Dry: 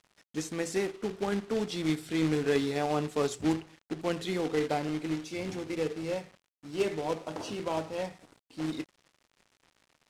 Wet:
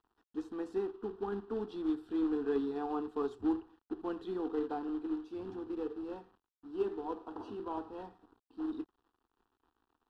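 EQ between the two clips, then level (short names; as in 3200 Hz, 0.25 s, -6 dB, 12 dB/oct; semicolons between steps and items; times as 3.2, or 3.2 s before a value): air absorption 480 m; high shelf 7000 Hz +4.5 dB; fixed phaser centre 580 Hz, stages 6; -2.0 dB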